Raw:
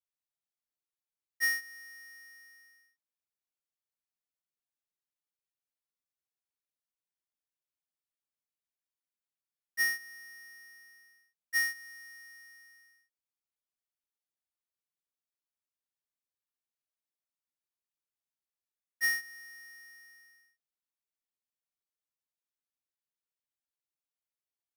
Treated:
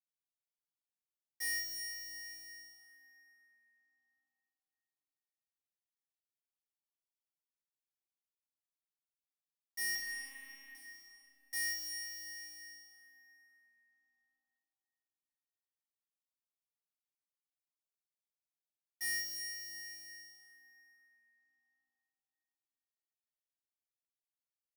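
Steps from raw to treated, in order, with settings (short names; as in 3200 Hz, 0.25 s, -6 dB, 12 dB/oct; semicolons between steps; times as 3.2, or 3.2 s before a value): sample leveller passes 3; 9.95–10.75 monotone LPC vocoder at 8 kHz 270 Hz; fixed phaser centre 300 Hz, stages 8; reverse bouncing-ball echo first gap 30 ms, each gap 1.2×, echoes 5; plate-style reverb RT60 4.1 s, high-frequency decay 0.5×, pre-delay 0.11 s, DRR 6 dB; gain -5 dB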